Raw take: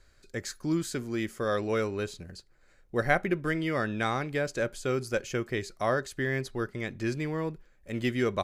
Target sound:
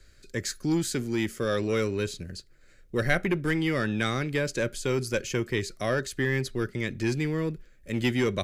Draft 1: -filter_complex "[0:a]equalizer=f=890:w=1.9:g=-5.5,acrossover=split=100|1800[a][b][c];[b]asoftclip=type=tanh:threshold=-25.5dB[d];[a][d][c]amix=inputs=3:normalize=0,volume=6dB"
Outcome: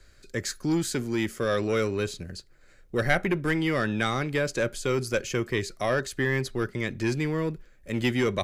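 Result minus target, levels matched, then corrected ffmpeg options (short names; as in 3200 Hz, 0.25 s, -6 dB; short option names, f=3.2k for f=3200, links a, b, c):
1000 Hz band +3.0 dB
-filter_complex "[0:a]equalizer=f=890:w=1.9:g=-15,acrossover=split=100|1800[a][b][c];[b]asoftclip=type=tanh:threshold=-25.5dB[d];[a][d][c]amix=inputs=3:normalize=0,volume=6dB"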